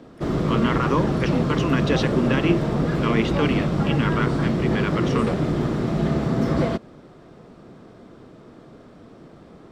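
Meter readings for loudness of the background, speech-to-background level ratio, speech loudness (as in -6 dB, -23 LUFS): -23.0 LUFS, -3.0 dB, -26.0 LUFS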